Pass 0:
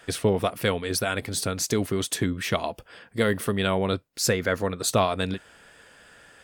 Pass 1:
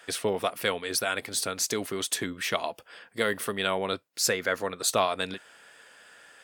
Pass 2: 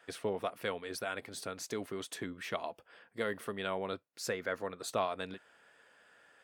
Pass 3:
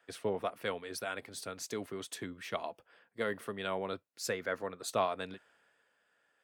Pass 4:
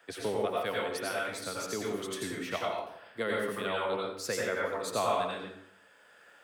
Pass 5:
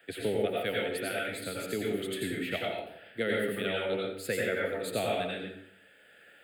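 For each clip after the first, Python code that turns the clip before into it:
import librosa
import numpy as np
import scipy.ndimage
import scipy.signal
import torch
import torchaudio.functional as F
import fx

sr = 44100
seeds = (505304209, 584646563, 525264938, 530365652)

y1 = fx.highpass(x, sr, hz=600.0, slope=6)
y2 = fx.high_shelf(y1, sr, hz=2800.0, db=-10.5)
y2 = F.gain(torch.from_numpy(y2), -7.0).numpy()
y3 = fx.band_widen(y2, sr, depth_pct=40)
y4 = fx.rev_plate(y3, sr, seeds[0], rt60_s=0.61, hf_ratio=0.8, predelay_ms=75, drr_db=-3.5)
y4 = fx.band_squash(y4, sr, depth_pct=40)
y5 = fx.fixed_phaser(y4, sr, hz=2500.0, stages=4)
y5 = F.gain(torch.from_numpy(y5), 4.5).numpy()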